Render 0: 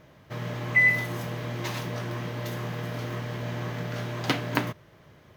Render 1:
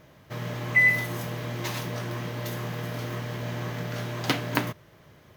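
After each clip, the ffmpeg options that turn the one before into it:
-af "highshelf=f=6700:g=6.5"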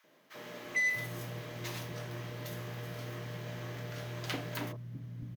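-filter_complex "[0:a]asoftclip=type=tanh:threshold=0.133,acrossover=split=210|970[s0][s1][s2];[s1]adelay=40[s3];[s0]adelay=650[s4];[s4][s3][s2]amix=inputs=3:normalize=0,volume=0.422"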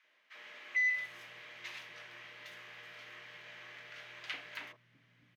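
-af "asoftclip=type=tanh:threshold=0.0668,bandpass=f=2300:t=q:w=1.7:csg=0,volume=1.26"

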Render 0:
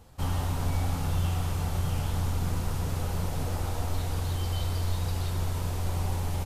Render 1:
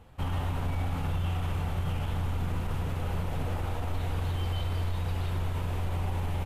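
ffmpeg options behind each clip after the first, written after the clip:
-af "highshelf=f=3800:t=q:w=1.5:g=-8.5,alimiter=limit=0.075:level=0:latency=1:release=34"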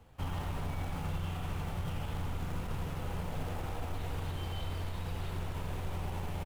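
-filter_complex "[0:a]acrossover=split=130|1500[s0][s1][s2];[s1]acrusher=bits=3:mode=log:mix=0:aa=0.000001[s3];[s0][s3][s2]amix=inputs=3:normalize=0,aecho=1:1:85:0.355,volume=0.562"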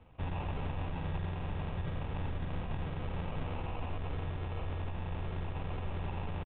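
-af "acrusher=samples=25:mix=1:aa=0.000001,aresample=8000,aresample=44100"

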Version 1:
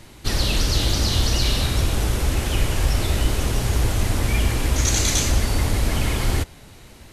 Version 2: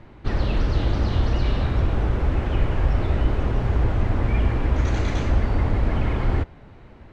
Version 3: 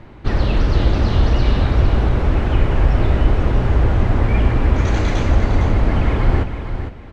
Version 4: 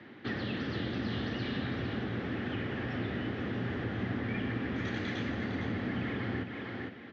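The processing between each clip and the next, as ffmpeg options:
-af "lowpass=1600"
-af "aecho=1:1:456|912|1368:0.355|0.0816|0.0188,volume=1.88"
-filter_complex "[0:a]acrossover=split=190[s0][s1];[s1]acompressor=threshold=0.0316:ratio=4[s2];[s0][s2]amix=inputs=2:normalize=0,highpass=f=140:w=0.5412,highpass=f=140:w=1.3066,equalizer=f=150:t=q:w=4:g=-8,equalizer=f=250:t=q:w=4:g=4,equalizer=f=620:t=q:w=4:g=-5,equalizer=f=960:t=q:w=4:g=-8,equalizer=f=1800:t=q:w=4:g=9,equalizer=f=3300:t=q:w=4:g=6,lowpass=f=5300:w=0.5412,lowpass=f=5300:w=1.3066,volume=0.447"

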